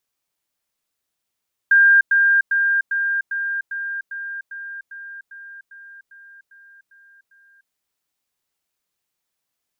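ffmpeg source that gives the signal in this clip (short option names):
-f lavfi -i "aevalsrc='pow(10,(-9-3*floor(t/0.4))/20)*sin(2*PI*1600*t)*clip(min(mod(t,0.4),0.3-mod(t,0.4))/0.005,0,1)':d=6:s=44100"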